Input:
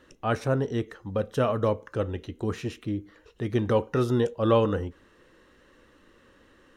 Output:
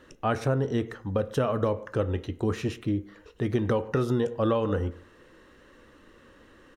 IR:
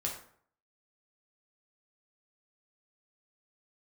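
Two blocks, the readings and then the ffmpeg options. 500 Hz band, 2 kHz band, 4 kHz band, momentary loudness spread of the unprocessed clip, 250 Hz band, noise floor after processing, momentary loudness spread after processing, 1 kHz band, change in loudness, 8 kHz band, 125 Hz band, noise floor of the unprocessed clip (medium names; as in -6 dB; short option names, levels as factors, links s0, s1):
-1.5 dB, -0.5 dB, -2.0 dB, 11 LU, 0.0 dB, -56 dBFS, 5 LU, -1.5 dB, -1.0 dB, no reading, 0.0 dB, -59 dBFS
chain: -filter_complex "[0:a]asplit=2[s0][s1];[s1]adelay=100,highpass=300,lowpass=3400,asoftclip=type=hard:threshold=0.126,volume=0.0398[s2];[s0][s2]amix=inputs=2:normalize=0,asplit=2[s3][s4];[1:a]atrim=start_sample=2205,lowpass=2700[s5];[s4][s5]afir=irnorm=-1:irlink=0,volume=0.2[s6];[s3][s6]amix=inputs=2:normalize=0,acompressor=threshold=0.0708:ratio=10,volume=1.26"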